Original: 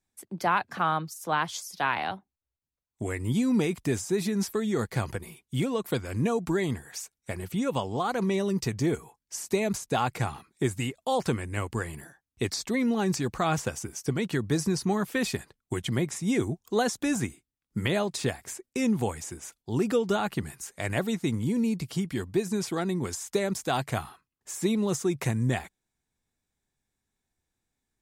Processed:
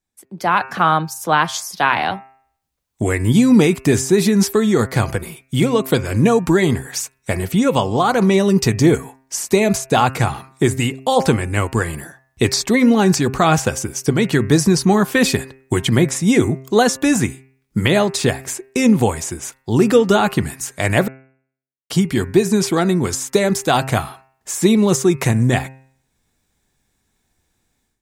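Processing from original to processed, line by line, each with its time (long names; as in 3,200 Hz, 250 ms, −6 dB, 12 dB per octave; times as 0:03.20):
0:21.08–0:21.90: silence
whole clip: hum removal 132.4 Hz, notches 21; automatic gain control gain up to 15.5 dB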